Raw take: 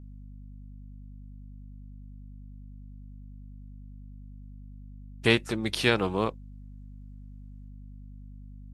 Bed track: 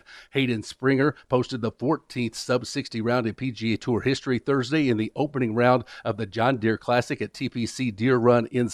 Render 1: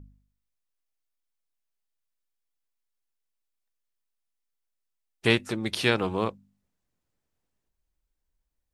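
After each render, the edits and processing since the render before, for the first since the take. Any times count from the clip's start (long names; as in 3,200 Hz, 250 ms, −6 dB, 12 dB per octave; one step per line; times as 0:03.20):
hum removal 50 Hz, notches 5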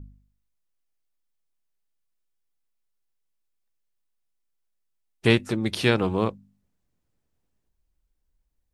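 low-shelf EQ 420 Hz +6.5 dB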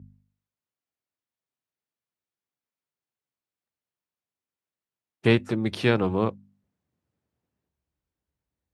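high-pass filter 74 Hz 24 dB per octave
high-shelf EQ 4,000 Hz −11 dB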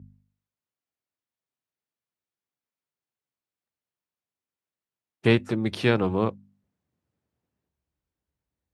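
no processing that can be heard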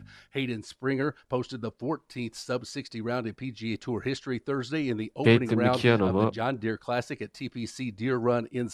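mix in bed track −7 dB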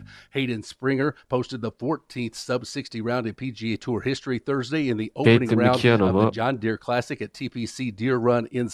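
level +5 dB
brickwall limiter −3 dBFS, peak gain reduction 2.5 dB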